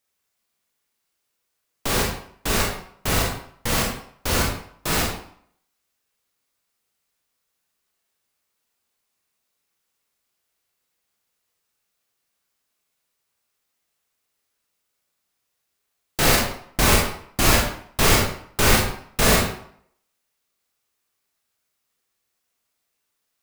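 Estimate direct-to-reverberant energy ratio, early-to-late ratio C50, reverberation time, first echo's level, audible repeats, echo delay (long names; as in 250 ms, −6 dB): −2.0 dB, 2.5 dB, 0.60 s, no echo audible, no echo audible, no echo audible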